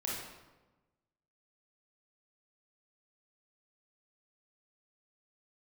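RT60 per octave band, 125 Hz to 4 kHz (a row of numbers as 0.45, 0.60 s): 1.5, 1.3, 1.2, 1.1, 0.90, 0.75 s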